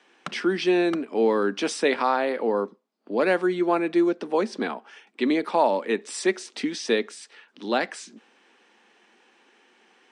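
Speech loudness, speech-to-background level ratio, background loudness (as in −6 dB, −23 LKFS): −25.0 LKFS, 17.0 dB, −42.0 LKFS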